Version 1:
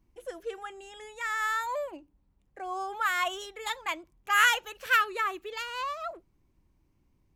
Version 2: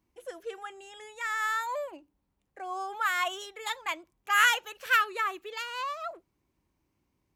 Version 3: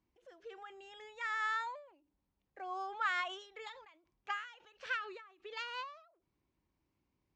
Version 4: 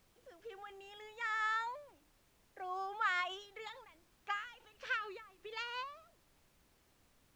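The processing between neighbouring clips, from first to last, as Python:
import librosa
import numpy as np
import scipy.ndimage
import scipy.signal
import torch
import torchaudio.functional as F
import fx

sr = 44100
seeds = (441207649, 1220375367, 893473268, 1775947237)

y1 = scipy.signal.sosfilt(scipy.signal.butter(2, 47.0, 'highpass', fs=sr, output='sos'), x)
y1 = fx.low_shelf(y1, sr, hz=240.0, db=-9.0)
y2 = scipy.signal.sosfilt(scipy.signal.butter(4, 5500.0, 'lowpass', fs=sr, output='sos'), y1)
y2 = fx.end_taper(y2, sr, db_per_s=100.0)
y2 = y2 * 10.0 ** (-5.5 / 20.0)
y3 = fx.dmg_noise_colour(y2, sr, seeds[0], colour='pink', level_db=-71.0)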